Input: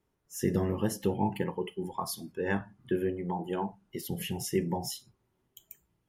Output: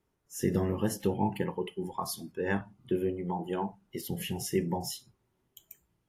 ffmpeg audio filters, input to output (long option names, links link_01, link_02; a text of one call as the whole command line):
ffmpeg -i in.wav -filter_complex "[0:a]asettb=1/sr,asplit=3[link_01][link_02][link_03];[link_01]atrim=end=2.614[link_04];[link_02]atrim=start=2.61:end=3.33,asetpts=PTS-STARTPTS,afade=type=in:duration=0.004:curve=qsin,afade=type=out:start_time=0.716:duration=0.004:curve=qsin,equalizer=frequency=1700:width=7:gain=-14.5[link_05];[link_03]atrim=start=3.326[link_06];[link_04][link_05]acrossfade=duration=0.004:curve1=hsin:curve2=qsin[link_07];[link_07][link_06]acrossfade=duration=0.004:curve1=qsin:curve2=hsin" -ar 32000 -c:a aac -b:a 64k out.aac